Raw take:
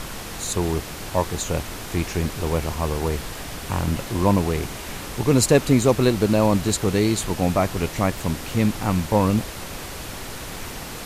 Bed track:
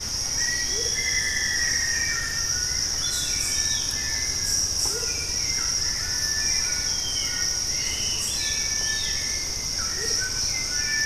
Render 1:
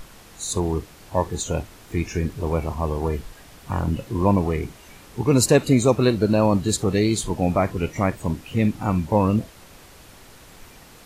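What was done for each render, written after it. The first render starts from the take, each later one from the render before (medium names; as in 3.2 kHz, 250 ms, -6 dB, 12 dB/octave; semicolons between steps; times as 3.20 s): noise print and reduce 13 dB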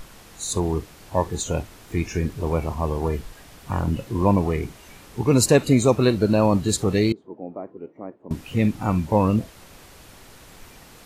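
7.12–8.31 s: ladder band-pass 410 Hz, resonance 30%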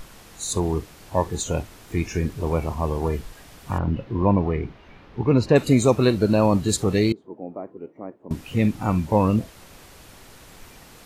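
3.78–5.56 s: distance through air 290 m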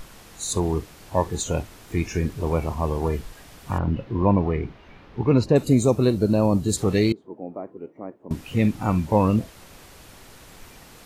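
5.44–6.77 s: peaking EQ 2 kHz -9 dB 2.4 oct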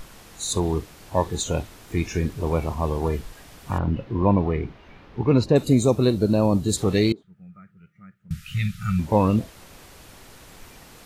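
7.23–8.99 s: time-frequency box 210–1200 Hz -30 dB; dynamic bell 3.7 kHz, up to +5 dB, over -53 dBFS, Q 4.2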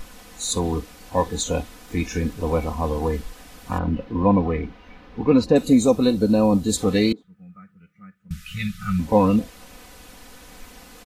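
comb 4 ms, depth 70%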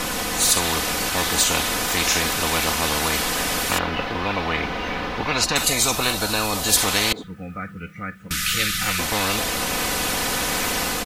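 level rider gain up to 3 dB; spectrum-flattening compressor 10:1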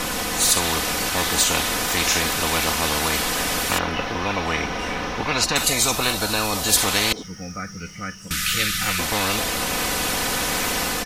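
add bed track -17 dB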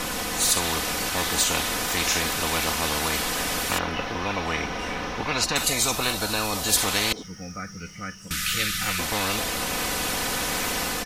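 trim -3.5 dB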